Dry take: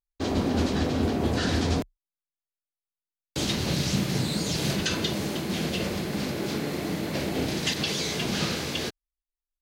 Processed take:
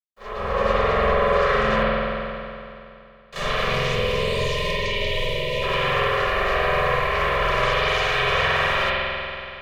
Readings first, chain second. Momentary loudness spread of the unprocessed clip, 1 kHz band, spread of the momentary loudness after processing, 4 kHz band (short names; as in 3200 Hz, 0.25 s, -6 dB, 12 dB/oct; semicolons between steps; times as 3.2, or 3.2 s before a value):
5 LU, +14.0 dB, 11 LU, +3.5 dB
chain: Chebyshev band-stop 320–690 Hz, order 5; three-band isolator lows -18 dB, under 450 Hz, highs -19 dB, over 2300 Hz; on a send: reverse echo 34 ms -9.5 dB; on the sum: AGC gain up to 15 dB; limiter -16.5 dBFS, peak gain reduction 8.5 dB; notch comb 590 Hz; spectral gain 3.7–5.63, 740–2100 Hz -29 dB; bit-crush 11-bit; ring modulator 300 Hz; spring tank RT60 2.7 s, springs 46 ms, chirp 70 ms, DRR -9 dB